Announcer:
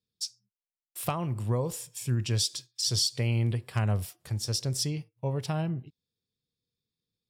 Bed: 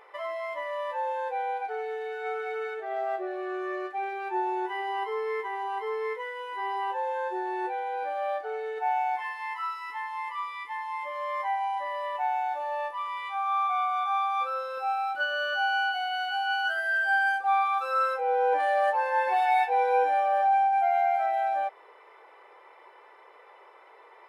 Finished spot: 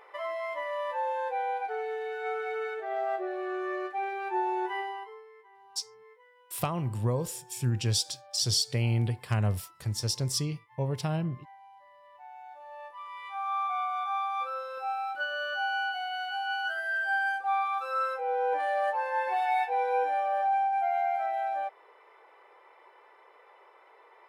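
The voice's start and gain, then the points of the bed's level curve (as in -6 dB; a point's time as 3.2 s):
5.55 s, 0.0 dB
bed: 4.79 s -0.5 dB
5.32 s -23.5 dB
12.02 s -23.5 dB
13.45 s -4 dB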